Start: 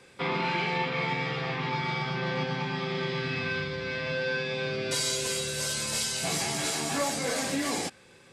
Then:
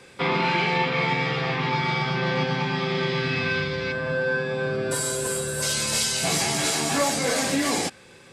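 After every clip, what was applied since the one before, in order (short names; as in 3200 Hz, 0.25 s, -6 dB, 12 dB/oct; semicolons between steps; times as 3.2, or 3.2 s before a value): spectral gain 3.92–5.62, 1800–7200 Hz -11 dB; gain +6 dB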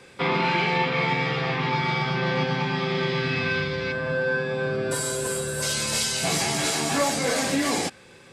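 bell 11000 Hz -2 dB 2.1 oct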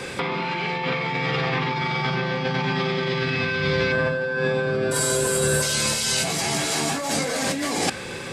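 negative-ratio compressor -33 dBFS, ratio -1; gain +9 dB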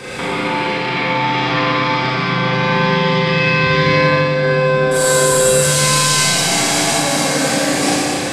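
Schroeder reverb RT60 2.7 s, combs from 30 ms, DRR -8 dB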